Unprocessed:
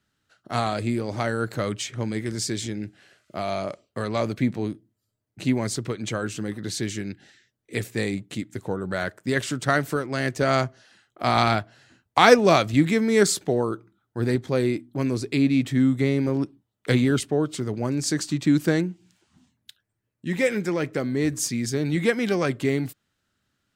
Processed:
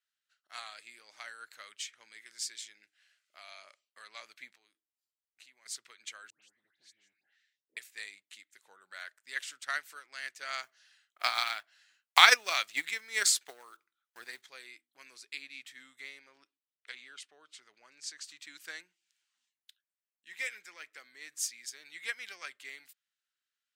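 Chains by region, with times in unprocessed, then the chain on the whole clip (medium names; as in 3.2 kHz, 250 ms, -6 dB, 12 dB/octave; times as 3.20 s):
4.55–5.66 s: band-stop 190 Hz, Q 5.1 + compression 2.5:1, threshold -39 dBFS
6.30–7.77 s: tilt EQ -4.5 dB/octave + compression 12:1, threshold -32 dBFS + phase dispersion highs, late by 130 ms, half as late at 1.7 kHz
10.63–14.47 s: block-companded coder 7-bit + transient shaper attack +10 dB, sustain +5 dB
16.19–18.24 s: distance through air 54 m + compression 1.5:1, threshold -26 dBFS
whole clip: Chebyshev high-pass 2 kHz, order 2; upward expansion 1.5:1, over -38 dBFS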